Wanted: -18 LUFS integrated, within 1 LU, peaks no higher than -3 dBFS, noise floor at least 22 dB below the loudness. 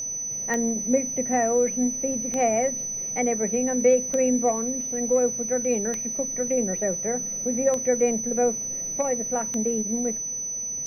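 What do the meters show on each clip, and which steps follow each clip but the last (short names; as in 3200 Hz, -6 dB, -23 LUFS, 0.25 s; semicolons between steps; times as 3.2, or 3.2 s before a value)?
clicks 6; steady tone 6000 Hz; tone level -28 dBFS; loudness -24.0 LUFS; peak -9.0 dBFS; loudness target -18.0 LUFS
-> de-click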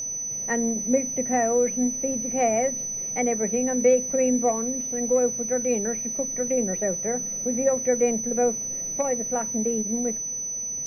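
clicks 0; steady tone 6000 Hz; tone level -28 dBFS
-> notch 6000 Hz, Q 30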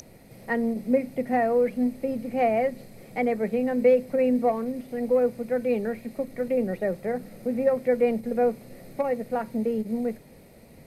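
steady tone none; loudness -26.0 LUFS; peak -10.0 dBFS; loudness target -18.0 LUFS
-> gain +8 dB; limiter -3 dBFS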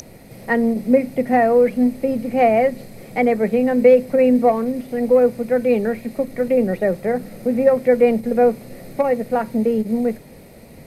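loudness -18.0 LUFS; peak -3.0 dBFS; noise floor -42 dBFS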